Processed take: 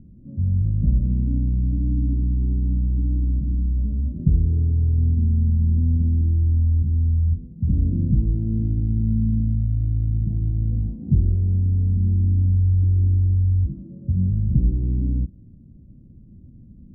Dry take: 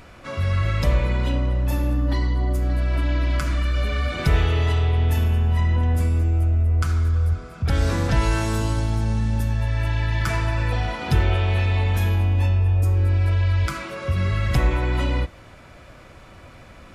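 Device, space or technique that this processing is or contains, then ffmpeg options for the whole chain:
the neighbour's flat through the wall: -af "lowpass=f=260:w=0.5412,lowpass=f=260:w=1.3066,equalizer=f=200:t=o:w=0.96:g=7"

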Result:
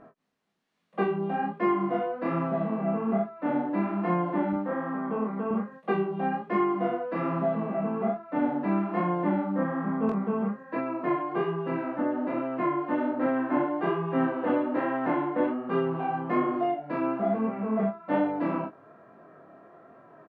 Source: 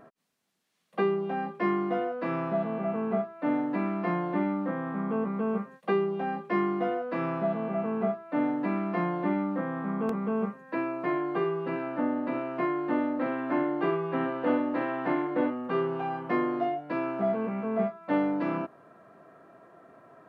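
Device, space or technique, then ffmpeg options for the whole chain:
double-tracked vocal: -filter_complex "[0:a]aemphasis=mode=reproduction:type=75fm,asettb=1/sr,asplit=3[s0][s1][s2];[s0]atrim=end=4.534[s3];[s1]atrim=start=4.53:end=5.51,asetpts=PTS-STARTPTS,afade=t=in:d=0.004:c=qsin,afade=t=out:st=0.976:d=0.004:c=qsin,highpass=250[s4];[s2]atrim=start=5.506[s5];[s3][s4]acrossfade=d=0.004:c1=hsin:c2=qsin[s6];[s6][s5]acrossfade=d=0.004:c1=qsin:c2=hsin,asplit=2[s7][s8];[s8]adelay=19,volume=0.335[s9];[s7][s9]amix=inputs=2:normalize=0,flanger=delay=22.5:depth=7.8:speed=1.2,volume=1.58"

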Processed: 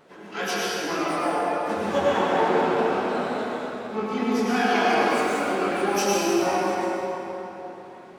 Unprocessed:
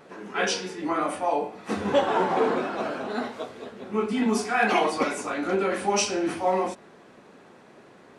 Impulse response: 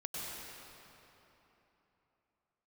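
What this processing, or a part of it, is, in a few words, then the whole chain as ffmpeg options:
shimmer-style reverb: -filter_complex "[0:a]asettb=1/sr,asplit=3[s0][s1][s2];[s0]atrim=end=3.974[s3];[s1]atrim=start=3.97:end=4.97,asetpts=PTS-STARTPTS,afade=t=in:d=0.004:c=qsin,afade=t=out:st=0.996:d=0.004:c=qsin,lowpass=f=6600:w=0.5412,lowpass=f=6600:w=1.3066[s4];[s2]atrim=start=4.966[s5];[s3][s4]acrossfade=d=0.004:c1=hsin:c2=qsin[s6];[s6][s5]acrossfade=d=0.004:c1=qsin:c2=hsin,asplit=2[s7][s8];[s8]asetrate=88200,aresample=44100,atempo=0.5,volume=0.282[s9];[s7][s9]amix=inputs=2:normalize=0[s10];[1:a]atrim=start_sample=2205[s11];[s10][s11]afir=irnorm=-1:irlink=0"

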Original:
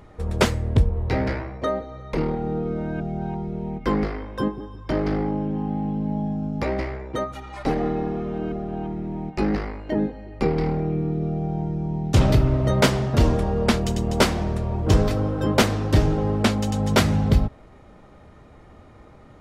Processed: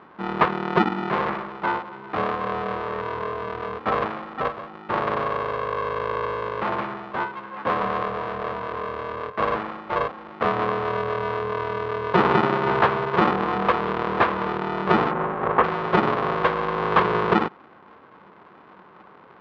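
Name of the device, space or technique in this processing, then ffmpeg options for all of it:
ring modulator pedal into a guitar cabinet: -filter_complex "[0:a]lowpass=2700,aeval=exprs='val(0)*sgn(sin(2*PI*270*n/s))':c=same,highpass=100,equalizer=f=190:t=q:w=4:g=4,equalizer=f=430:t=q:w=4:g=6,equalizer=f=1100:t=q:w=4:g=6,lowpass=f=3700:w=0.5412,lowpass=f=3700:w=1.3066,asettb=1/sr,asplit=3[s0][s1][s2];[s0]atrim=end=15.114[s3];[s1]atrim=start=15.11:end=15.64,asetpts=PTS-STARTPTS,afade=t=in:d=0.004:c=qsin,afade=t=out:st=0.526:d=0.004:c=qsin,lowpass=1900[s4];[s2]atrim=start=15.636[s5];[s3][s4]acrossfade=d=0.004:c1=hsin:c2=qsin[s6];[s6][s5]acrossfade=d=0.004:c1=qsin:c2=hsin,equalizer=f=1200:w=0.74:g=10,volume=0.398"

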